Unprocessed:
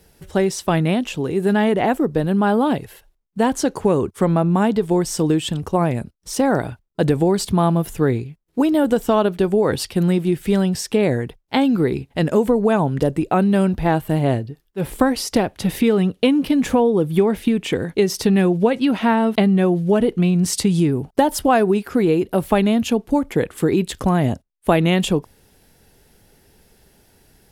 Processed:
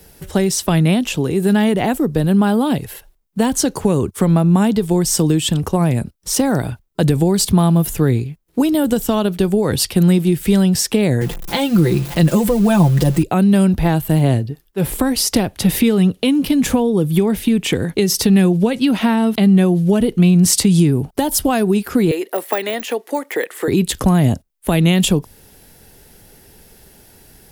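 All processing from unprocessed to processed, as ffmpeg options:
-filter_complex "[0:a]asettb=1/sr,asplit=3[a][b][c];[a]atrim=end=11.214[d];[b]atrim=start=11.21:end=13.23,asetpts=PTS-STARTPTS,afade=t=in:d=0.004:c=qsin,afade=t=out:st=2.016:d=0.004:c=qsin,aeval=exprs='val(0)+0.5*0.0237*sgn(val(0))':c=same,aecho=1:1:5.8:0.8,atrim=end_sample=89082[e];[c]atrim=start=13.226[f];[d][e]acrossfade=d=0.004:c1=hsin:c2=qsin[g];[g][f]acrossfade=d=0.004:c1=qsin:c2=hsin,asettb=1/sr,asplit=3[h][i][j];[h]atrim=end=22.114[k];[i]atrim=start=22.11:end=23.68,asetpts=PTS-STARTPTS,afade=t=in:d=0.004:c=qsin,afade=t=out:st=1.566:d=0.004:c=qsin,deesser=0.8,highpass=f=390:w=0.5412,highpass=f=390:w=1.3066,equalizer=f=1.9k:t=o:w=0.29:g=10.5[l];[j]atrim=start=23.676[m];[k][l]acrossfade=d=0.004:c1=hsin:c2=qsin[n];[n][m]acrossfade=d=0.004:c1=qsin:c2=hsin,highshelf=f=11k:g=9,acrossover=split=220|3000[o][p][q];[p]acompressor=threshold=-28dB:ratio=2.5[r];[o][r][q]amix=inputs=3:normalize=0,alimiter=level_in=10dB:limit=-1dB:release=50:level=0:latency=1,volume=-3dB"

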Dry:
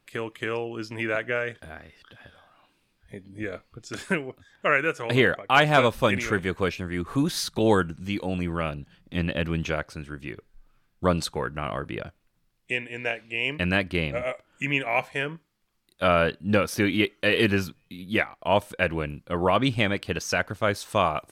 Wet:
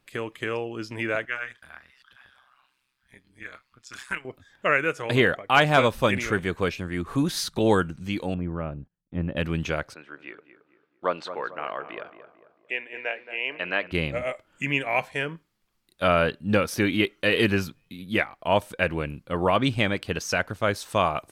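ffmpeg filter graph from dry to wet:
-filter_complex "[0:a]asettb=1/sr,asplit=3[a][b][c];[a]atrim=end=1.254[d];[b]atrim=start=1.25:end=4.25,asetpts=PTS-STARTPTS,afade=t=in:d=0.004:c=qsin,afade=t=out:st=2.996:d=0.004:c=qsin,lowshelf=f=770:t=q:w=1.5:g=-11.5,tremolo=f=130:d=0.788[e];[c]atrim=start=4.246[f];[d][e]acrossfade=d=0.004:c1=hsin:c2=qsin[g];[g][f]acrossfade=d=0.004:c1=qsin:c2=hsin,asettb=1/sr,asplit=3[h][i][j];[h]atrim=end=8.344[k];[i]atrim=start=8.34:end=9.37,asetpts=PTS-STARTPTS,afade=t=in:d=0.004:c=qsin,afade=t=out:st=1.026:d=0.004:c=qsin,lowpass=1.1k,equalizer=f=810:w=0.32:g=-3,agate=range=-27dB:threshold=-50dB:ratio=16:release=100:detection=peak[l];[j]atrim=start=9.366[m];[k][l]acrossfade=d=0.004:c1=hsin:c2=qsin[n];[n][m]acrossfade=d=0.004:c1=qsin:c2=hsin,asettb=1/sr,asplit=3[o][p][q];[o]atrim=end=9.944[r];[p]atrim=start=9.94:end=13.92,asetpts=PTS-STARTPTS,afade=t=in:d=0.004:c=qsin,afade=t=out:st=3.976:d=0.004:c=qsin,highpass=490,lowpass=2.8k,asplit=2[s][t];[t]adelay=223,lowpass=f=1.7k:p=1,volume=-11dB,asplit=2[u][v];[v]adelay=223,lowpass=f=1.7k:p=1,volume=0.45,asplit=2[w][x];[x]adelay=223,lowpass=f=1.7k:p=1,volume=0.45,asplit=2[y][z];[z]adelay=223,lowpass=f=1.7k:p=1,volume=0.45,asplit=2[aa][ab];[ab]adelay=223,lowpass=f=1.7k:p=1,volume=0.45[ac];[s][u][w][y][aa][ac]amix=inputs=6:normalize=0,atrim=end_sample=175518[ad];[q]atrim=start=13.916[ae];[r][ad]acrossfade=d=0.004:c1=hsin:c2=qsin[af];[af][ae]acrossfade=d=0.004:c1=qsin:c2=hsin"

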